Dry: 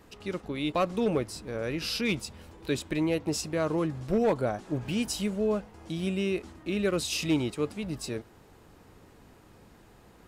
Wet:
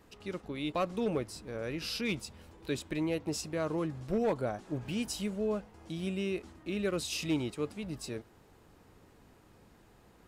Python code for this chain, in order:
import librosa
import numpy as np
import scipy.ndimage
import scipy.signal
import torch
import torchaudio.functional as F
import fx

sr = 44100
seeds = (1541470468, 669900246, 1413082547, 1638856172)

y = x * 10.0 ** (-5.0 / 20.0)